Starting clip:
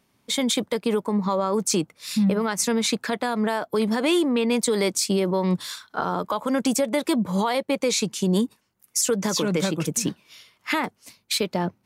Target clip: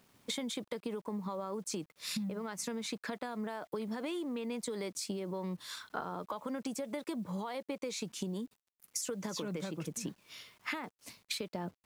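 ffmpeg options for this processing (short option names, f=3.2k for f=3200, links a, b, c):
-af "highshelf=f=3k:g=-4.5,acompressor=threshold=-35dB:ratio=16,acrusher=bits=10:mix=0:aa=0.000001"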